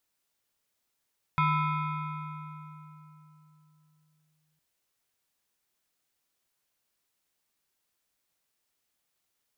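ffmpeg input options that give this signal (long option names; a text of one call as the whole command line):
ffmpeg -f lavfi -i "aevalsrc='0.0891*pow(10,-3*t/3.57)*sin(2*PI*154*t+1.4*clip(1-t/3.1,0,1)*sin(2*PI*7.52*154*t))':duration=3.21:sample_rate=44100" out.wav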